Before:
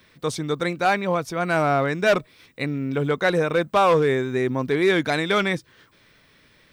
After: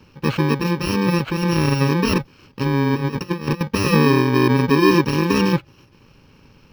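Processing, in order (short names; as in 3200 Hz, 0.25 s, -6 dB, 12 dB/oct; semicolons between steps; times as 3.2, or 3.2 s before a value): FFT order left unsorted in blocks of 64 samples; in parallel at -2 dB: limiter -18.5 dBFS, peak gain reduction 7.5 dB; 2.62–3.61 on the sum: negative-ratio compressor -24 dBFS, ratio -0.5; air absorption 290 m; gain +8 dB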